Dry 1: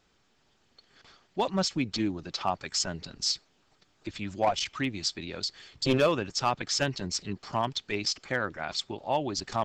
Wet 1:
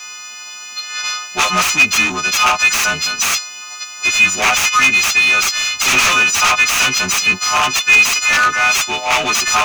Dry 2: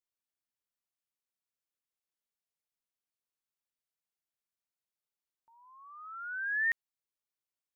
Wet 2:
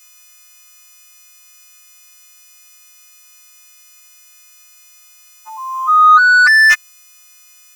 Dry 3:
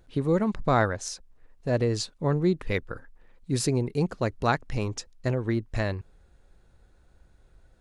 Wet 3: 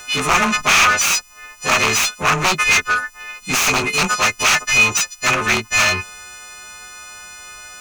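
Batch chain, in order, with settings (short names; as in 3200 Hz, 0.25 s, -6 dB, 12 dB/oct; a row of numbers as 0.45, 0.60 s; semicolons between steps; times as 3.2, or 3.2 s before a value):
frequency quantiser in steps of 3 st; high shelf 4800 Hz +9.5 dB; wrapped overs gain 17.5 dB; overdrive pedal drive 26 dB, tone 3700 Hz, clips at -17.5 dBFS; thirty-one-band EQ 125 Hz -6 dB, 315 Hz -9 dB, 500 Hz -8 dB, 1250 Hz +9 dB, 2500 Hz +12 dB, 6300 Hz +11 dB; normalise peaks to -2 dBFS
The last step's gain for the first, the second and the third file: +6.0, +12.5, +5.0 dB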